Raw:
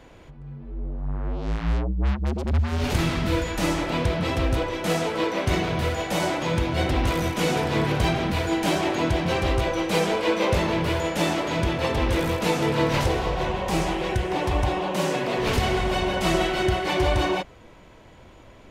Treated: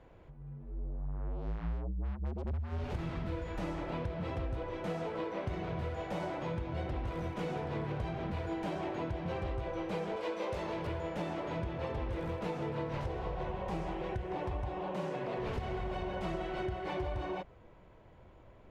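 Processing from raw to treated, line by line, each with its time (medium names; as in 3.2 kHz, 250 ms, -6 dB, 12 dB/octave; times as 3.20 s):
10.16–10.87 s: tone controls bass -8 dB, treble +8 dB
whole clip: low-pass 1 kHz 6 dB/octave; peaking EQ 260 Hz -5.5 dB 0.65 oct; compression, threshold -26 dBFS; trim -7 dB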